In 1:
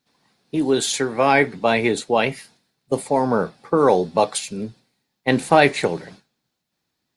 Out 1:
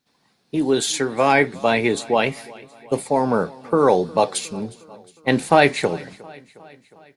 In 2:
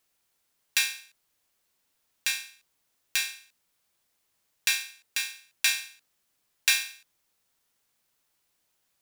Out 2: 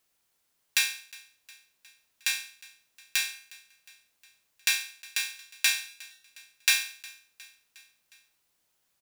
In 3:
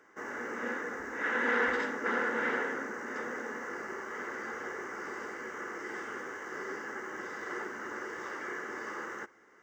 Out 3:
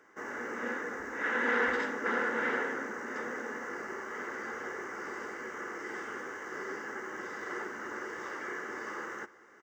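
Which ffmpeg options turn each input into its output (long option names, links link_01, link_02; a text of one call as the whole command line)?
ffmpeg -i in.wav -af "aecho=1:1:360|720|1080|1440:0.075|0.045|0.027|0.0162" out.wav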